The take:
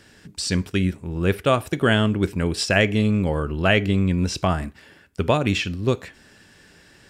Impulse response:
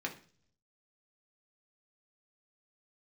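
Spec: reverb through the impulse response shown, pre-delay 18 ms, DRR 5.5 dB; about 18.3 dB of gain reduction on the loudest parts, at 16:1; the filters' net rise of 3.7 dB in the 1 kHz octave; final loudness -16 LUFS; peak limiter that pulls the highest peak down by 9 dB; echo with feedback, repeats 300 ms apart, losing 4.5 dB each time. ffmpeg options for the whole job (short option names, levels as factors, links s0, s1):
-filter_complex "[0:a]equalizer=f=1000:t=o:g=5,acompressor=threshold=0.0316:ratio=16,alimiter=level_in=1.58:limit=0.0631:level=0:latency=1,volume=0.631,aecho=1:1:300|600|900|1200|1500|1800|2100|2400|2700:0.596|0.357|0.214|0.129|0.0772|0.0463|0.0278|0.0167|0.01,asplit=2[s0][s1];[1:a]atrim=start_sample=2205,adelay=18[s2];[s1][s2]afir=irnorm=-1:irlink=0,volume=0.398[s3];[s0][s3]amix=inputs=2:normalize=0,volume=10"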